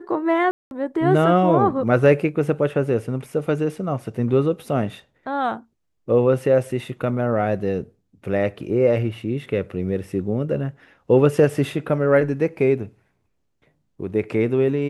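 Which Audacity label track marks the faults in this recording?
0.510000	0.710000	dropout 201 ms

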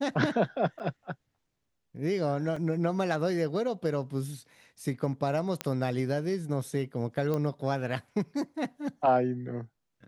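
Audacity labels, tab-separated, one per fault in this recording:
0.790000	0.800000	dropout 8.2 ms
2.560000	2.560000	dropout 4.5 ms
5.610000	5.610000	pop -14 dBFS
7.340000	7.340000	pop -19 dBFS

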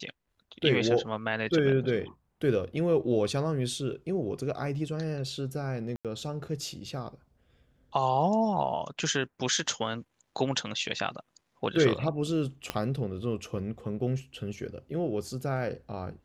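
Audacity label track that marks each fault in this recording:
5.960000	6.050000	dropout 87 ms
12.700000	12.700000	pop -14 dBFS

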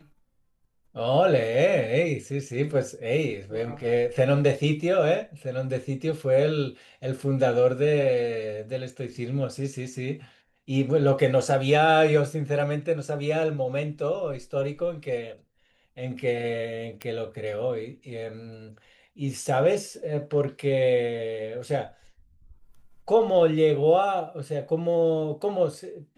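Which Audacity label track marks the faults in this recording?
17.020000	17.020000	pop -18 dBFS

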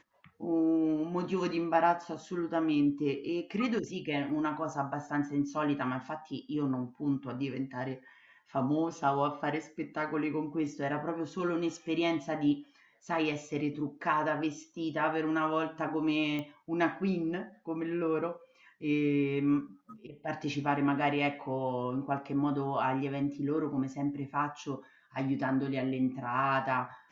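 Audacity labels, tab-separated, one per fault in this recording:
16.390000	16.390000	pop -24 dBFS

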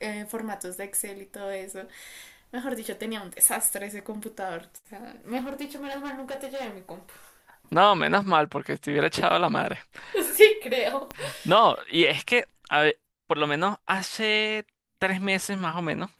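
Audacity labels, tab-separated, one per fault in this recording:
5.390000	6.700000	clipped -30 dBFS
11.110000	11.110000	pop -18 dBFS

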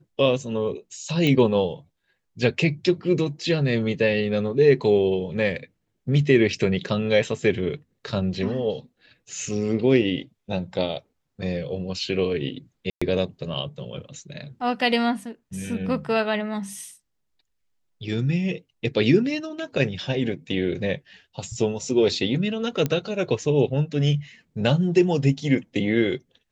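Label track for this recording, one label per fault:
1.270000	1.270000	pop -11 dBFS
12.900000	13.020000	dropout 115 ms
22.860000	22.860000	pop -11 dBFS

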